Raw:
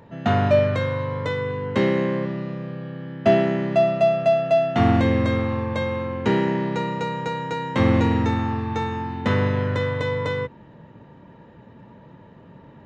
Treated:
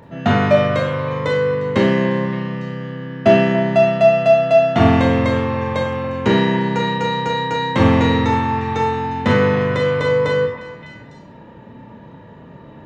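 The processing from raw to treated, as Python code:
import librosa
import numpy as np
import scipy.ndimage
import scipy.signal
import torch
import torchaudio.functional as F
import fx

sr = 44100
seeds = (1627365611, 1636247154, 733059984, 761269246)

y = fx.echo_stepped(x, sr, ms=285, hz=860.0, octaves=1.4, feedback_pct=70, wet_db=-9.0)
y = fx.rev_schroeder(y, sr, rt60_s=0.42, comb_ms=26, drr_db=2.5)
y = F.gain(torch.from_numpy(y), 4.5).numpy()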